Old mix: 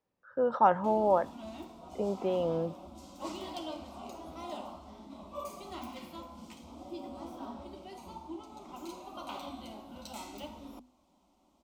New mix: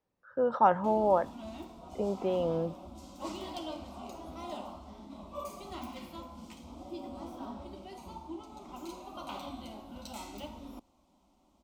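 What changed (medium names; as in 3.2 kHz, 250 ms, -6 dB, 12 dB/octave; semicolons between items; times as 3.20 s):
background: remove hum notches 50/100/150/200/250 Hz; master: add bass shelf 74 Hz +6.5 dB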